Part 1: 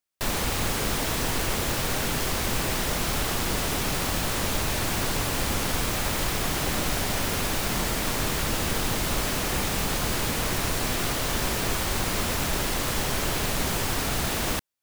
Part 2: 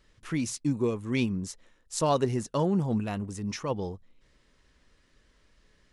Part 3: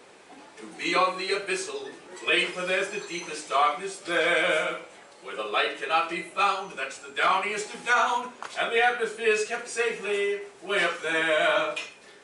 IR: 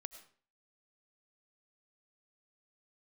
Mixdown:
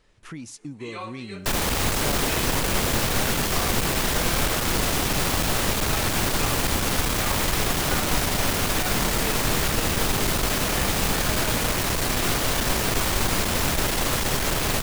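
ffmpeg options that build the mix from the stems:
-filter_complex "[0:a]aeval=exprs='clip(val(0),-1,0.0447)':c=same,adelay=1250,volume=2dB,asplit=2[a][b];[b]volume=-4.5dB[c];[1:a]acompressor=threshold=-39dB:ratio=2.5,volume=-0.5dB,asplit=2[d][e];[e]volume=-11.5dB[f];[2:a]agate=range=-7dB:threshold=-40dB:ratio=16:detection=peak,volume=-15dB,asplit=2[g][h];[h]volume=-6.5dB[i];[3:a]atrim=start_sample=2205[j];[c][f][i]amix=inputs=3:normalize=0[k];[k][j]afir=irnorm=-1:irlink=0[l];[a][d][g][l]amix=inputs=4:normalize=0"

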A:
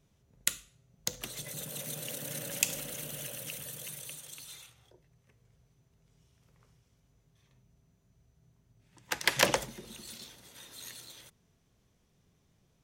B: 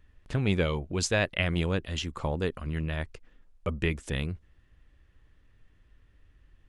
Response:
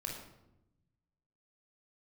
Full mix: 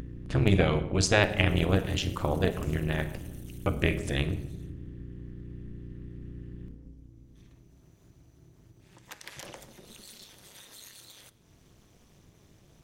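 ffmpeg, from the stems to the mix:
-filter_complex "[0:a]alimiter=limit=-17.5dB:level=0:latency=1:release=56,volume=-12.5dB,asplit=2[a][b];[b]volume=-13.5dB[c];[1:a]aeval=exprs='val(0)+0.00631*(sin(2*PI*60*n/s)+sin(2*PI*2*60*n/s)/2+sin(2*PI*3*60*n/s)/3+sin(2*PI*4*60*n/s)/4+sin(2*PI*5*60*n/s)/5)':c=same,volume=2.5dB,asplit=2[d][e];[e]volume=-3.5dB[f];[2:a]atrim=start_sample=2205[g];[c][f]amix=inputs=2:normalize=0[h];[h][g]afir=irnorm=-1:irlink=0[i];[a][d][i]amix=inputs=3:normalize=0,acompressor=mode=upward:threshold=-33dB:ratio=2.5,tremolo=f=210:d=0.857"

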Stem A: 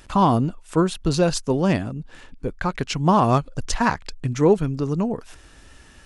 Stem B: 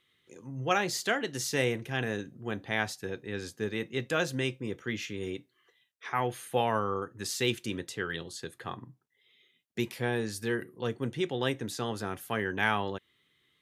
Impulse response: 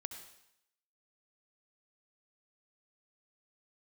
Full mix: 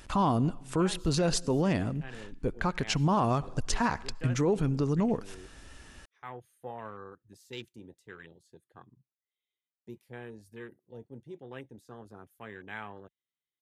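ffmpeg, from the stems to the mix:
-filter_complex "[0:a]volume=-3.5dB,asplit=2[a][b];[b]volume=-15dB[c];[1:a]afwtdn=0.02,highshelf=f=7k:g=10,adelay=100,volume=-13.5dB[d];[2:a]atrim=start_sample=2205[e];[c][e]afir=irnorm=-1:irlink=0[f];[a][d][f]amix=inputs=3:normalize=0,alimiter=limit=-18dB:level=0:latency=1:release=71"

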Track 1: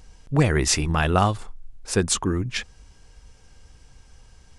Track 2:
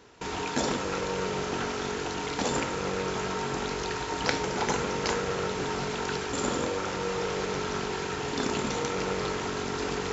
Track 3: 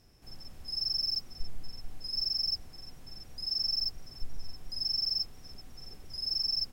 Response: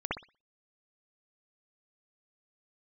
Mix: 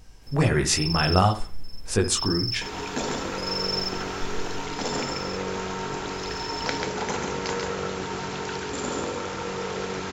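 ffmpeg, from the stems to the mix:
-filter_complex "[0:a]flanger=delay=17:depth=4.8:speed=2.1,volume=0.5dB,asplit=3[a][b][c];[b]volume=-15dB[d];[1:a]adelay=2400,volume=-1.5dB,asplit=2[e][f];[f]volume=-4dB[g];[2:a]volume=-1.5dB,asplit=3[h][i][j];[i]volume=-5.5dB[k];[j]volume=-8.5dB[l];[c]apad=whole_len=296457[m];[h][m]sidechaingate=range=-33dB:threshold=-59dB:ratio=16:detection=peak[n];[3:a]atrim=start_sample=2205[o];[d][k]amix=inputs=2:normalize=0[p];[p][o]afir=irnorm=-1:irlink=0[q];[g][l]amix=inputs=2:normalize=0,aecho=0:1:138:1[r];[a][e][n][q][r]amix=inputs=5:normalize=0"

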